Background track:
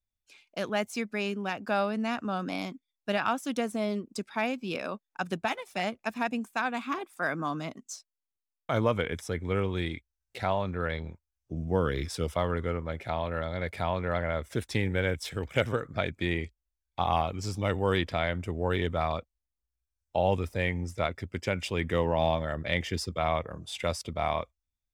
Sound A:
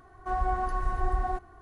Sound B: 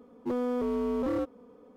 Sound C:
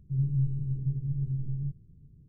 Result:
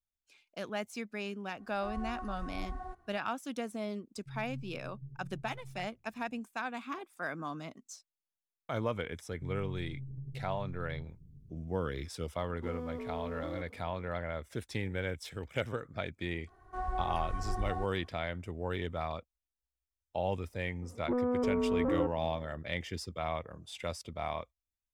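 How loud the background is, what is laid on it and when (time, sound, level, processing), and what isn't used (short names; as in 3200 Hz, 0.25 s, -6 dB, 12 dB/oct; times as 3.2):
background track -7.5 dB
1.56 add A -13 dB
4.16 add C -17 dB
9.32 add C -1 dB + compressor, threshold -39 dBFS
12.37 add B -4.5 dB + limiter -33 dBFS
16.47 add A -7.5 dB
20.82 add B -1 dB + LPF 1700 Hz 24 dB/oct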